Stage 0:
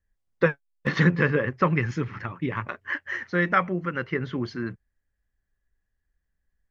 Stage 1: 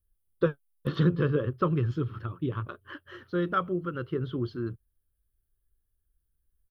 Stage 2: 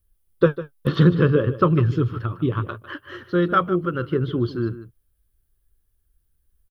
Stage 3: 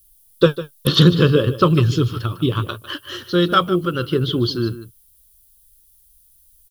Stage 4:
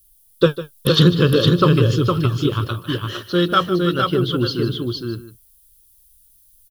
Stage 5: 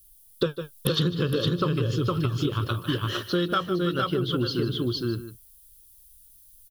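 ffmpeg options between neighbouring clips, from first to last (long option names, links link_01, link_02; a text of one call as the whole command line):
ffmpeg -i in.wav -af "firequalizer=gain_entry='entry(120,0);entry(200,-9);entry(350,-1);entry(820,-16);entry(1300,-5);entry(2000,-27);entry(3200,-3);entry(6500,-22);entry(9400,9)':delay=0.05:min_phase=1,volume=1.5dB" out.wav
ffmpeg -i in.wav -af "aecho=1:1:151:0.188,volume=8.5dB" out.wav
ffmpeg -i in.wav -af "aexciter=amount=4.5:drive=8.1:freq=2900,volume=3dB" out.wav
ffmpeg -i in.wav -af "aecho=1:1:461:0.631,volume=-1dB" out.wav
ffmpeg -i in.wav -af "acompressor=threshold=-22dB:ratio=6" out.wav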